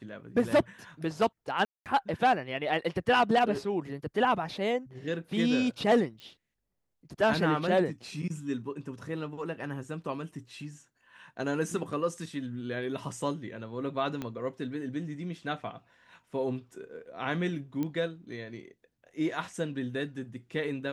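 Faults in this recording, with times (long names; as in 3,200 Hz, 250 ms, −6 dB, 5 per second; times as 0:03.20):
0:01.65–0:01.86: drop-out 208 ms
0:06.20: click −32 dBFS
0:14.22: click −21 dBFS
0:17.83: click −21 dBFS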